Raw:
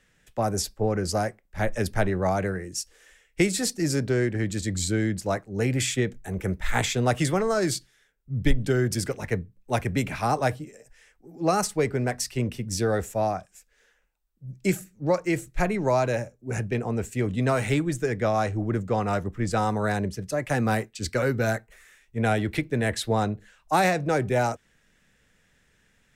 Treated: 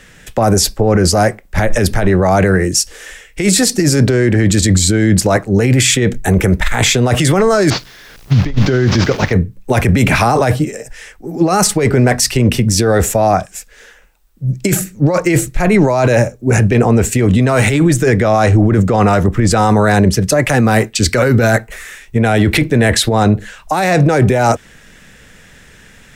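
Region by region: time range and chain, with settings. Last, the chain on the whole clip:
7.70–9.33 s: one-bit delta coder 32 kbps, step -36.5 dBFS + expander -33 dBFS + word length cut 12-bit, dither triangular
whole clip: compressor with a negative ratio -28 dBFS, ratio -1; loudness maximiser +20.5 dB; trim -1.5 dB

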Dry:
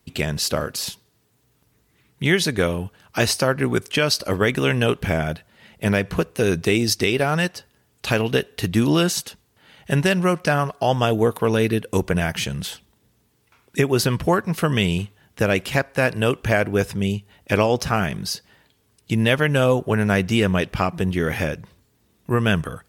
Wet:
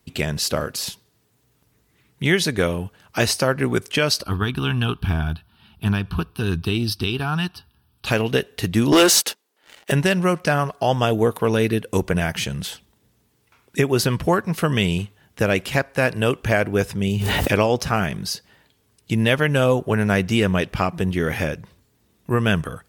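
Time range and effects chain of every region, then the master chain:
4.23–8.06 s: peaking EQ 72 Hz +10 dB 0.7 oct + static phaser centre 2 kHz, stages 6 + loudspeaker Doppler distortion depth 0.12 ms
8.92–9.92 s: high-pass 300 Hz 24 dB/octave + waveshaping leveller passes 3
17.07–17.52 s: block-companded coder 7-bit + level flattener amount 100%
whole clip: none

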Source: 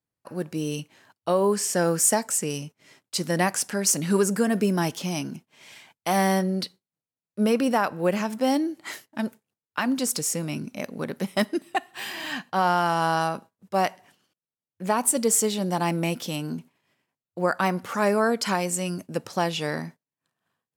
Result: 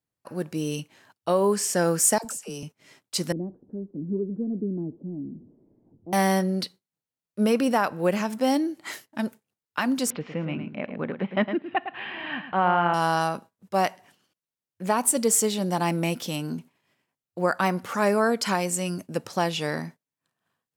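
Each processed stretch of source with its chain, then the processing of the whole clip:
2.18–2.63 s: peaking EQ 2 kHz -10.5 dB 0.35 oct + compression 10:1, threshold -30 dBFS + phase dispersion lows, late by 68 ms, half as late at 510 Hz
3.32–6.13 s: jump at every zero crossing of -37.5 dBFS + four-pole ladder low-pass 390 Hz, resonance 45%
10.10–12.94 s: steep low-pass 3 kHz + upward compressor, threshold -34 dBFS + delay 109 ms -9.5 dB
whole clip: none

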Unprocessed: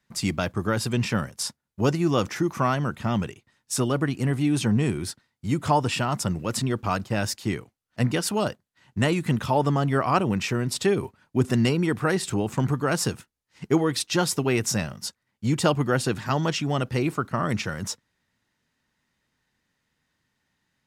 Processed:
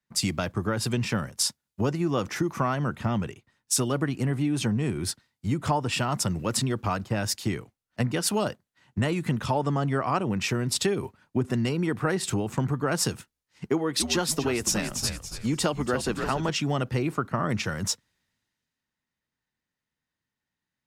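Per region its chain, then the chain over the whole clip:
9.44–10.26 s: low-pass 9.8 kHz 24 dB/octave + treble shelf 6.6 kHz +7 dB
13.69–16.49 s: high-pass 160 Hz + frequency-shifting echo 285 ms, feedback 46%, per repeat -84 Hz, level -9.5 dB
whole clip: compression 6:1, threshold -26 dBFS; three bands expanded up and down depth 40%; trim +3.5 dB

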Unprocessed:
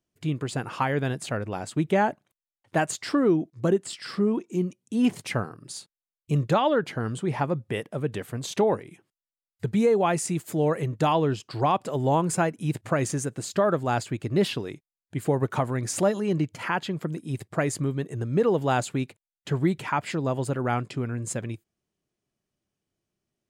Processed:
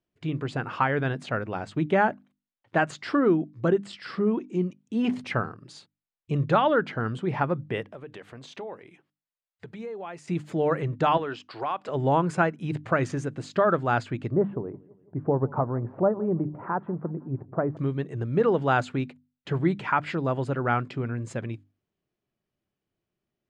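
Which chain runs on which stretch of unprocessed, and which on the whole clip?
7.85–10.28 s: bass shelf 230 Hz -12 dB + compression 2.5:1, threshold -40 dBFS
11.17–11.89 s: frequency weighting A + compression 3:1, threshold -27 dBFS
14.31–17.77 s: low-pass 1.1 kHz 24 dB/octave + feedback delay 169 ms, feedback 55%, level -23.5 dB
whole clip: low-pass 3.5 kHz 12 dB/octave; hum notches 50/100/150/200/250/300 Hz; dynamic bell 1.4 kHz, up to +6 dB, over -42 dBFS, Q 2.6

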